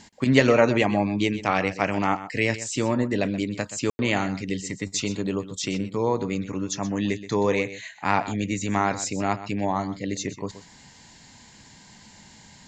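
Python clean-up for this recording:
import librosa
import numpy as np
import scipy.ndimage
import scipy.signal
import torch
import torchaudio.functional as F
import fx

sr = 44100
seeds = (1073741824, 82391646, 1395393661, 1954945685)

y = fx.fix_ambience(x, sr, seeds[0], print_start_s=10.9, print_end_s=11.4, start_s=3.9, end_s=3.99)
y = fx.fix_echo_inverse(y, sr, delay_ms=126, level_db=-14.0)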